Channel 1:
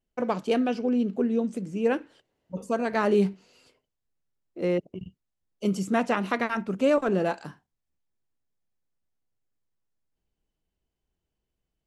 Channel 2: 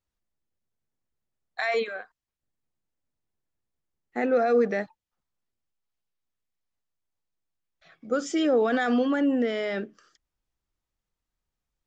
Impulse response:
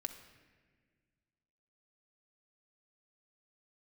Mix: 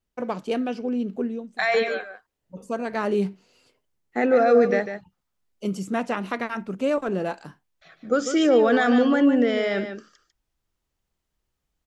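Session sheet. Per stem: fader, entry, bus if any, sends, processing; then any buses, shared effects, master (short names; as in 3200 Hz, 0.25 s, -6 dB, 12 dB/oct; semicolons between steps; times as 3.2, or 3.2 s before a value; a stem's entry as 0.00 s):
-1.5 dB, 0.00 s, no send, no echo send, auto duck -16 dB, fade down 0.30 s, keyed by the second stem
0.0 dB, 0.00 s, no send, echo send -9 dB, AGC gain up to 4.5 dB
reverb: off
echo: echo 0.148 s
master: dry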